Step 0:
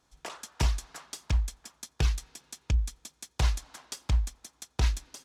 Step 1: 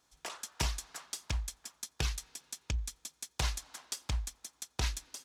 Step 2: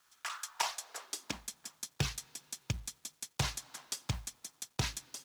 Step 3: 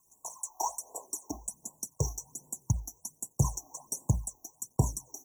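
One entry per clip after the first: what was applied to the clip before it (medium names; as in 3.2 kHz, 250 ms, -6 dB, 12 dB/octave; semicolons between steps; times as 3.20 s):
tilt EQ +1.5 dB/octave; trim -3 dB
high-pass sweep 1.3 kHz -> 120 Hz, 0.38–1.73 s; companded quantiser 6-bit
phase shifter stages 12, 1.3 Hz, lowest notch 160–2100 Hz; brick-wall FIR band-stop 1.1–5.6 kHz; trim +8.5 dB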